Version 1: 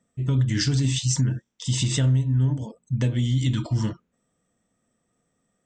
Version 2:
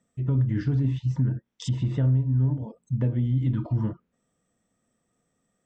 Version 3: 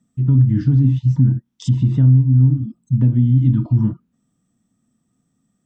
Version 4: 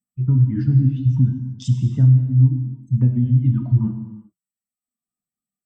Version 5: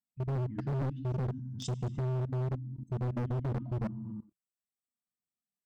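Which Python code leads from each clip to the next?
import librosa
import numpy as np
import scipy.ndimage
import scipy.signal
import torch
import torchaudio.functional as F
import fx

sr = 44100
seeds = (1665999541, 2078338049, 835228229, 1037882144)

y1 = fx.env_lowpass_down(x, sr, base_hz=1100.0, full_db=-22.5)
y1 = y1 * librosa.db_to_amplitude(-1.5)
y2 = fx.graphic_eq(y1, sr, hz=(125, 250, 500, 2000), db=(6, 9, -11, -6))
y2 = fx.spec_repair(y2, sr, seeds[0], start_s=2.48, length_s=0.28, low_hz=350.0, high_hz=1400.0, source='both')
y2 = y2 * librosa.db_to_amplitude(3.0)
y3 = fx.bin_expand(y2, sr, power=1.5)
y3 = fx.dereverb_blind(y3, sr, rt60_s=0.83)
y3 = fx.rev_gated(y3, sr, seeds[1], gate_ms=420, shape='falling', drr_db=5.0)
y3 = y3 * librosa.db_to_amplitude(-1.0)
y4 = fx.peak_eq(y3, sr, hz=690.0, db=3.5, octaves=0.3)
y4 = fx.level_steps(y4, sr, step_db=20)
y4 = np.clip(y4, -10.0 ** (-30.5 / 20.0), 10.0 ** (-30.5 / 20.0))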